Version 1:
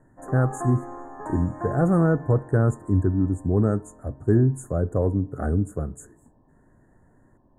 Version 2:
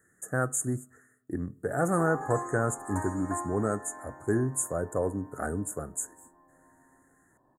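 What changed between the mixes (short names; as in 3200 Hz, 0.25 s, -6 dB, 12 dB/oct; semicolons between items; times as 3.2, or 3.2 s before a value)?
background: entry +1.70 s; master: add tilt +4 dB/oct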